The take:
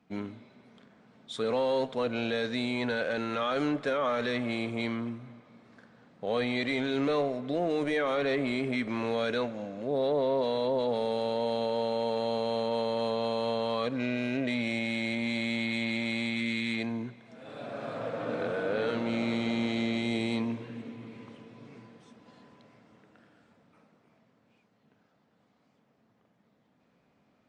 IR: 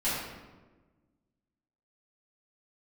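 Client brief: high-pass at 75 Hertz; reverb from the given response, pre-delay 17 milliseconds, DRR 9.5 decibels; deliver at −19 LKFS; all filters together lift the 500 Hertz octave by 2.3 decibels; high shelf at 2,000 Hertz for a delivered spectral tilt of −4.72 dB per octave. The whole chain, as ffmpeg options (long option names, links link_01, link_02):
-filter_complex "[0:a]highpass=75,equalizer=frequency=500:width_type=o:gain=3,highshelf=frequency=2000:gain=-6,asplit=2[link_01][link_02];[1:a]atrim=start_sample=2205,adelay=17[link_03];[link_02][link_03]afir=irnorm=-1:irlink=0,volume=-19dB[link_04];[link_01][link_04]amix=inputs=2:normalize=0,volume=10.5dB"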